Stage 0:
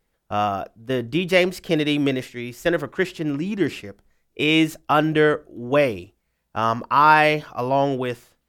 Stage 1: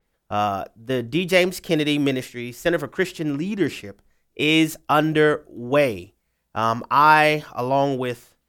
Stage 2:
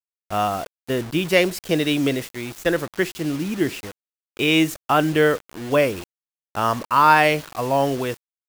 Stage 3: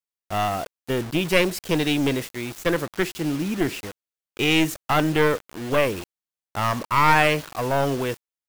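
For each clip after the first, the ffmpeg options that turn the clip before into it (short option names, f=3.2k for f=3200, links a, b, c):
-af "adynamicequalizer=threshold=0.0141:dfrequency=5200:dqfactor=0.7:tfrequency=5200:tqfactor=0.7:attack=5:release=100:ratio=0.375:range=3:mode=boostabove:tftype=highshelf"
-af "acrusher=bits=5:mix=0:aa=0.000001"
-af "aeval=exprs='clip(val(0),-1,0.0794)':c=same"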